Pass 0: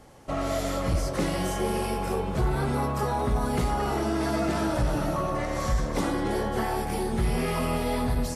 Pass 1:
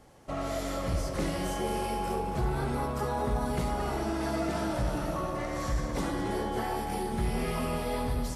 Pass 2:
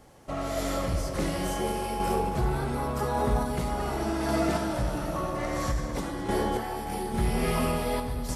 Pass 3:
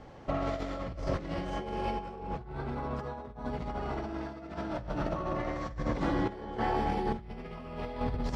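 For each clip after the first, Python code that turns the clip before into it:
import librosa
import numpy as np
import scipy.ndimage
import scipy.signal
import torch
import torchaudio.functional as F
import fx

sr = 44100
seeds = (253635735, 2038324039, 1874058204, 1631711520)

y1 = fx.echo_heads(x, sr, ms=71, heads='first and third', feedback_pct=62, wet_db=-12.5)
y1 = F.gain(torch.from_numpy(y1), -5.0).numpy()
y2 = fx.high_shelf(y1, sr, hz=12000.0, db=4.5)
y2 = fx.tremolo_random(y2, sr, seeds[0], hz=3.5, depth_pct=55)
y2 = F.gain(torch.from_numpy(y2), 5.0).numpy()
y3 = fx.over_compress(y2, sr, threshold_db=-33.0, ratio=-0.5)
y3 = fx.air_absorb(y3, sr, metres=190.0)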